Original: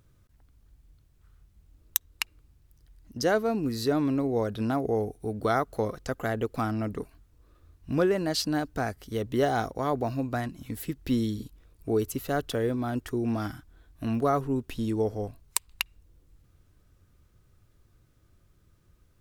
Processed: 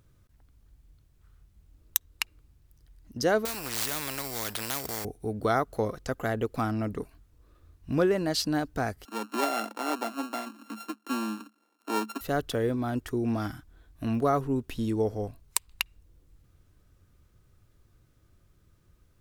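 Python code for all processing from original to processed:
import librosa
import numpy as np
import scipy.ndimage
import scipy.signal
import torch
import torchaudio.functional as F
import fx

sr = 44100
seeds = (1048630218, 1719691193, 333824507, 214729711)

y = fx.chain(x, sr, fx.highpass(hz=43.0, slope=12),
    fx.sample_hold(seeds[0], rate_hz=13000.0, jitter_pct=0),
    fx.spectral_comp(ratio=4.0), at=(3.45, 5.05))
y = fx.chain(y, sr, fx.sample_sort(block=32),
    fx.cheby_ripple_highpass(hz=210.0, ripple_db=6), at=(9.05, 12.21))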